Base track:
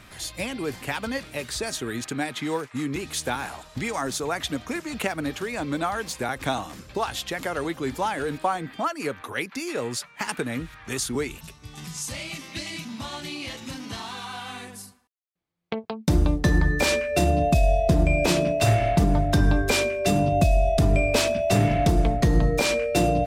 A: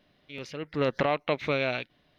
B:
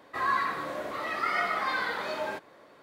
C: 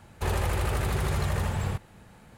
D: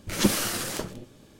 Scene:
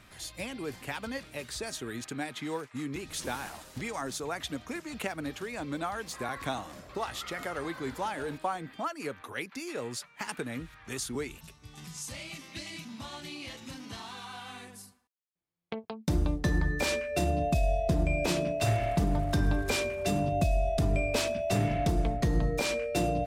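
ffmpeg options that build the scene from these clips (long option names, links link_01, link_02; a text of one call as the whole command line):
ffmpeg -i bed.wav -i cue0.wav -i cue1.wav -i cue2.wav -i cue3.wav -filter_complex "[0:a]volume=-7.5dB[link_01];[4:a]asplit=2[link_02][link_03];[link_03]adelay=6.9,afreqshift=-1.8[link_04];[link_02][link_04]amix=inputs=2:normalize=1[link_05];[3:a]acompressor=threshold=-30dB:ratio=6:attack=3.2:release=140:knee=1:detection=peak[link_06];[link_05]atrim=end=1.39,asetpts=PTS-STARTPTS,volume=-17.5dB,afade=type=in:duration=0.004:curve=hsin,afade=type=out:start_time=1.386:duration=0.004:curve=hsin,adelay=3000[link_07];[2:a]atrim=end=2.82,asetpts=PTS-STARTPTS,volume=-16dB,afade=type=in:duration=0.004:curve=hsin,afade=type=out:start_time=2.816:duration=0.004:curve=hsin,adelay=5980[link_08];[link_06]atrim=end=2.37,asetpts=PTS-STARTPTS,volume=-13dB,afade=type=in:duration=0.004:curve=hsin,afade=type=out:start_time=2.366:duration=0.004:curve=hsin,adelay=18540[link_09];[link_01][link_07][link_08][link_09]amix=inputs=4:normalize=0" out.wav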